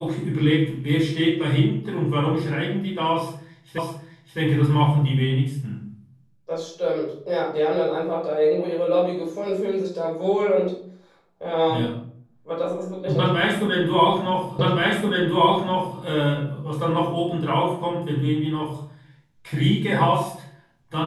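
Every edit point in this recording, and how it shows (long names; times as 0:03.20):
0:03.78: the same again, the last 0.61 s
0:14.59: the same again, the last 1.42 s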